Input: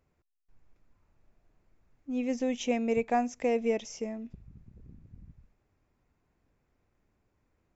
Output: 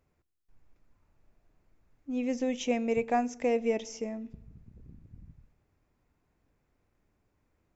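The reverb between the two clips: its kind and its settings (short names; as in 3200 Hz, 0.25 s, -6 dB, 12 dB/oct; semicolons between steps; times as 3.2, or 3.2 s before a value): FDN reverb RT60 0.98 s, low-frequency decay 1.3×, high-frequency decay 0.6×, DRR 19 dB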